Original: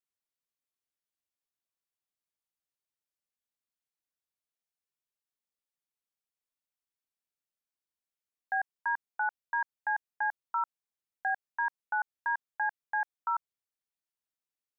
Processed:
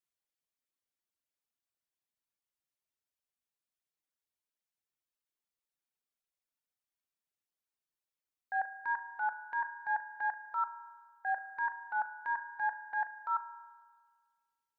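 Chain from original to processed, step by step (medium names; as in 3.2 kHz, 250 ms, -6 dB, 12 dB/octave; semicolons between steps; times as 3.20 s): spring tank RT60 1.7 s, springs 36 ms, chirp 65 ms, DRR 5.5 dB; reverb removal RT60 0.92 s; transient shaper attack -7 dB, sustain +3 dB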